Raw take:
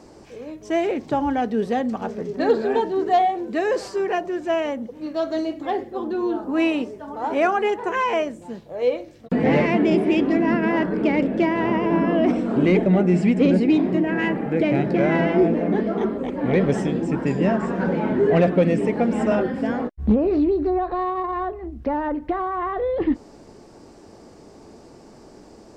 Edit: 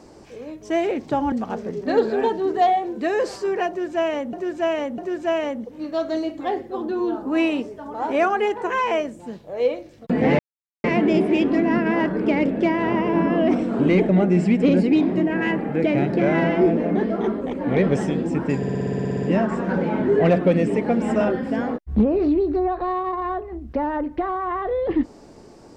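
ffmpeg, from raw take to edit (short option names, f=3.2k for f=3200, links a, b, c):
-filter_complex "[0:a]asplit=16[a][b][c][d][e][f][g][h][i][j][k][l][m][n][o][p];[a]atrim=end=1.322[q];[b]atrim=start=1.838:end=4.852[r];[c]atrim=start=4.198:end=4.852[s];[d]atrim=start=4.198:end=9.61,asetpts=PTS-STARTPTS,afade=t=out:st=5.408:d=0.004:c=hsin,apad=pad_dur=0.45[t];[e]atrim=start=9.61:end=17.402,asetpts=PTS-STARTPTS,afade=t=in:d=0.004:c=hsin[u];[f]atrim=start=17.338:end=17.402[v];[g]atrim=start=17.338:end=17.402[w];[h]atrim=start=17.338:end=17.402[x];[i]atrim=start=17.338:end=17.402[y];[j]atrim=start=17.338:end=17.402[z];[k]atrim=start=17.338:end=17.402[aa];[l]atrim=start=17.338:end=17.402[ab];[m]atrim=start=17.338:end=17.402[ac];[n]atrim=start=17.338:end=17.402[ad];[o]atrim=start=17.338:end=17.402[ae];[p]atrim=start=17.338[af];[q][r]acrossfade=d=0.004:c1=hsin:c2=hsin[ag];[ag][s]acrossfade=d=0.004:c1=hsin:c2=hsin[ah];[t][u]concat=n=2:v=0:a=1[ai];[ah][ai]acrossfade=d=0.004:c1=hsin:c2=hsin[aj];[aj][v]acrossfade=d=0.004:c1=hsin:c2=hsin[ak];[ak][w]acrossfade=d=0.004:c1=hsin:c2=hsin[al];[al][x]acrossfade=d=0.004:c1=hsin:c2=hsin[am];[am][y]acrossfade=d=0.004:c1=hsin:c2=hsin[an];[an][z]acrossfade=d=0.004:c1=hsin:c2=hsin[ao];[ao][aa]acrossfade=d=0.004:c1=hsin:c2=hsin[ap];[ap][ab]acrossfade=d=0.004:c1=hsin:c2=hsin[aq];[aq][ac]acrossfade=d=0.004:c1=hsin:c2=hsin[ar];[ar][ad]acrossfade=d=0.004:c1=hsin:c2=hsin[as];[as][ae]acrossfade=d=0.004:c1=hsin:c2=hsin[at];[at][af]acrossfade=d=0.004:c1=hsin:c2=hsin"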